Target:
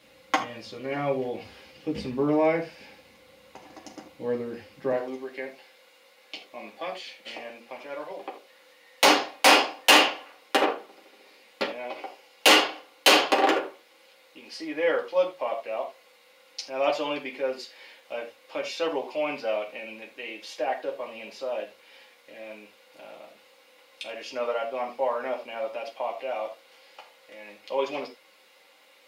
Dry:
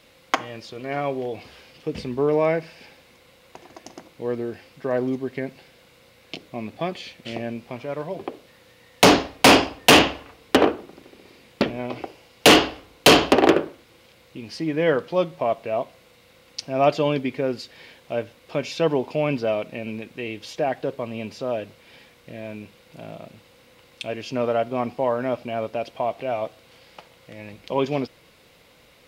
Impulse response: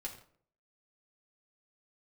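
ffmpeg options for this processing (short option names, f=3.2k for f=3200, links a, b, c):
-filter_complex "[0:a]asetnsamples=n=441:p=0,asendcmd='4.92 highpass f 540',highpass=62[a];[1:a]atrim=start_sample=2205,atrim=end_sample=4410[b];[a][b]afir=irnorm=-1:irlink=0"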